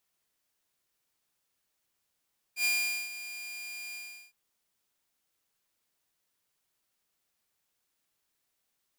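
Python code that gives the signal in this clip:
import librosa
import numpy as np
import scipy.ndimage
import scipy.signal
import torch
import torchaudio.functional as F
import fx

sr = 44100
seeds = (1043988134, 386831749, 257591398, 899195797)

y = fx.adsr_tone(sr, wave='saw', hz=2410.0, attack_ms=85.0, decay_ms=441.0, sustain_db=-14.5, held_s=1.38, release_ms=384.0, level_db=-22.0)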